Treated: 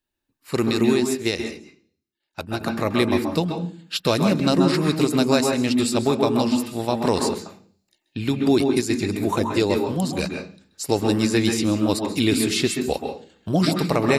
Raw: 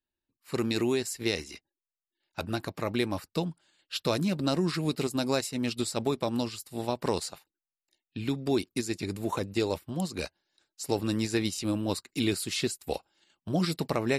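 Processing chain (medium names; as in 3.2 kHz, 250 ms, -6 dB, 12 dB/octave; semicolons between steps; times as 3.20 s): on a send at -3 dB: reverberation RT60 0.40 s, pre-delay 128 ms; 0.71–2.61 s: on the sum: upward expansion 1.5:1, over -37 dBFS; trim +7.5 dB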